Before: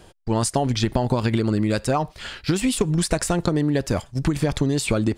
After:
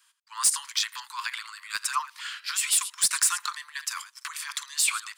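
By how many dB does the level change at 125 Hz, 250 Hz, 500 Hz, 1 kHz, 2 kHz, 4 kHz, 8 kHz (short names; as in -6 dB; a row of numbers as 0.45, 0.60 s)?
under -40 dB, under -40 dB, under -40 dB, -5.5 dB, 0.0 dB, +1.5 dB, +6.0 dB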